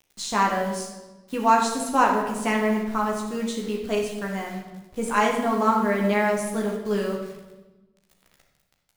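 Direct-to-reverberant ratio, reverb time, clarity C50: −1.0 dB, 1.2 s, 4.0 dB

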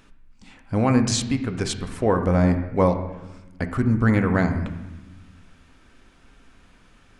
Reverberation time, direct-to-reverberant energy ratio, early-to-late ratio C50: 1.1 s, 6.0 dB, 9.0 dB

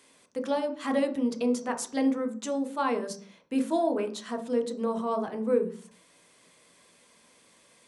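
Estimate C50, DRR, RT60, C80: 12.5 dB, 4.0 dB, 0.45 s, 17.0 dB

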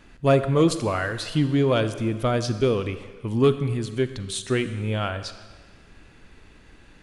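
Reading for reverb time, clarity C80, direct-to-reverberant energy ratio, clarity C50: 1.5 s, 12.5 dB, 11.0 dB, 11.5 dB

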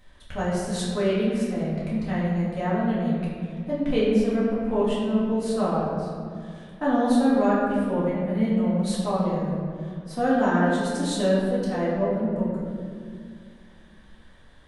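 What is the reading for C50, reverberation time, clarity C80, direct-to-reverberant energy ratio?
−0.5 dB, 2.1 s, 1.0 dB, −9.0 dB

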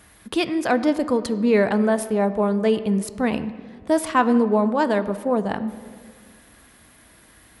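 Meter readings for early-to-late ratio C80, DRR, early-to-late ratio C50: 14.5 dB, 11.5 dB, 13.5 dB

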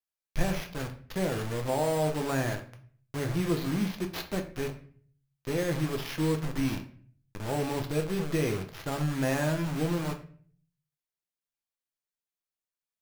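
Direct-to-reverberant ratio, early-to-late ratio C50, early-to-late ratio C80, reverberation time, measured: 3.5 dB, 11.5 dB, 15.5 dB, 0.50 s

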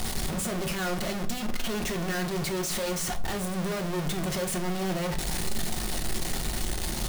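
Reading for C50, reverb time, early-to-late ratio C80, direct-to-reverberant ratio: 14.5 dB, 0.50 s, 19.0 dB, 5.0 dB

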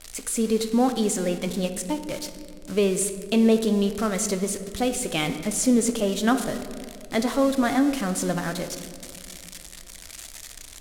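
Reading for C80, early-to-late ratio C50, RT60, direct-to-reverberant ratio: 11.5 dB, 10.0 dB, 2.5 s, 8.0 dB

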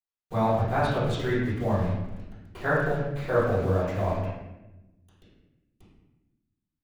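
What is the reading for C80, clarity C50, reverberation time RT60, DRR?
3.0 dB, −0.5 dB, 1.0 s, −13.0 dB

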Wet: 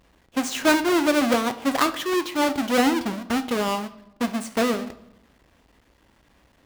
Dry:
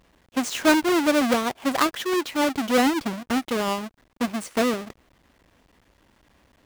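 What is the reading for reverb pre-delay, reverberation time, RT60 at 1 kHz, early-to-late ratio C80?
15 ms, 0.80 s, 0.80 s, 17.5 dB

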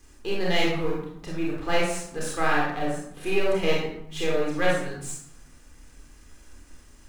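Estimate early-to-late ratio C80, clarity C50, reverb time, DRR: 4.5 dB, 0.5 dB, 0.75 s, −4.5 dB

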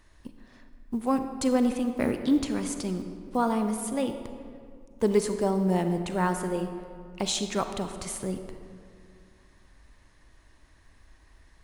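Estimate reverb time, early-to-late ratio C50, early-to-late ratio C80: 2.2 s, 8.0 dB, 9.0 dB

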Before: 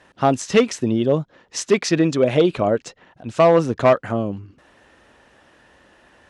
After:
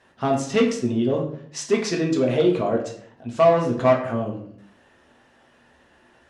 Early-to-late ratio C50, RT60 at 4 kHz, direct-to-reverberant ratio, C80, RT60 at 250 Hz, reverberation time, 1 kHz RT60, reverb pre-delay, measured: 7.0 dB, 0.45 s, 0.0 dB, 11.0 dB, 0.80 s, 0.60 s, 0.55 s, 3 ms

